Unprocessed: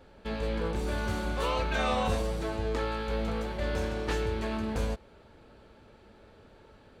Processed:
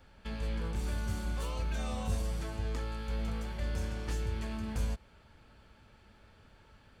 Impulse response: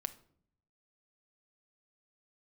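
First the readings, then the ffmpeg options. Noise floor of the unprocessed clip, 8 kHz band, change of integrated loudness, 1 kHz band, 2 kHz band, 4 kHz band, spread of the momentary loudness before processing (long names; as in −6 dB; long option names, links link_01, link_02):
−57 dBFS, −1.5 dB, −5.0 dB, −11.5 dB, −9.5 dB, −7.5 dB, 5 LU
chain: -filter_complex "[0:a]equalizer=frequency=430:width=0.73:gain=-11.5,bandreject=frequency=3900:width=15,acrossover=split=620|5500[link_01][link_02][link_03];[link_02]acompressor=threshold=-47dB:ratio=6[link_04];[link_01][link_04][link_03]amix=inputs=3:normalize=0"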